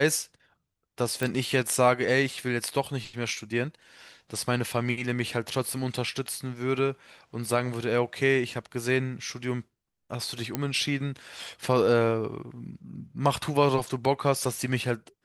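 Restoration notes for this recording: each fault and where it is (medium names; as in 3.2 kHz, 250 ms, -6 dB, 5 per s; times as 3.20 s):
1.23 s: pop
10.55 s: pop -12 dBFS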